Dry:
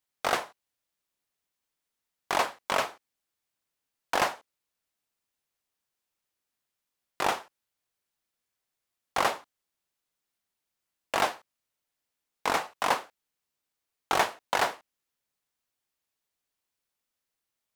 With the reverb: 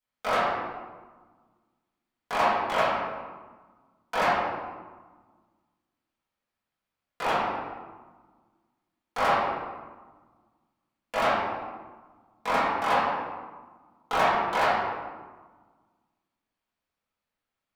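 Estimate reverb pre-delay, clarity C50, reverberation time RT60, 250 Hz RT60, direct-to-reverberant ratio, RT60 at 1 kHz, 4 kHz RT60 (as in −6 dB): 4 ms, −1.0 dB, 1.4 s, 2.0 s, −13.0 dB, 1.4 s, 0.85 s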